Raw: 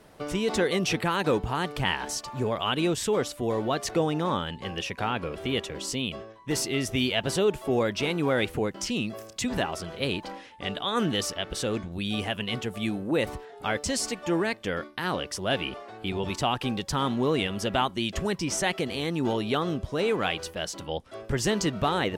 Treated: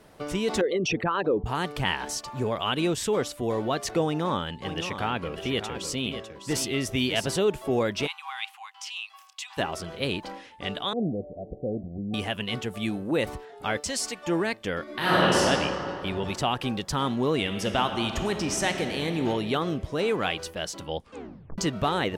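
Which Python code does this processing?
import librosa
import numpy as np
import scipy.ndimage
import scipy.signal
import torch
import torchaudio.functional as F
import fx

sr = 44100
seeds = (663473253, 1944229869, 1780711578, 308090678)

y = fx.envelope_sharpen(x, sr, power=2.0, at=(0.61, 1.46))
y = fx.echo_single(y, sr, ms=603, db=-9.5, at=(4.05, 7.29))
y = fx.cheby_ripple_highpass(y, sr, hz=760.0, ripple_db=9, at=(8.06, 9.57), fade=0.02)
y = fx.cheby_ripple(y, sr, hz=750.0, ripple_db=3, at=(10.93, 12.14))
y = fx.low_shelf(y, sr, hz=500.0, db=-7.5, at=(13.8, 14.27))
y = fx.reverb_throw(y, sr, start_s=14.83, length_s=0.53, rt60_s=2.8, drr_db=-10.5)
y = fx.reverb_throw(y, sr, start_s=17.39, length_s=1.79, rt60_s=2.7, drr_db=5.5)
y = fx.edit(y, sr, fx.tape_stop(start_s=21.02, length_s=0.56), tone=tone)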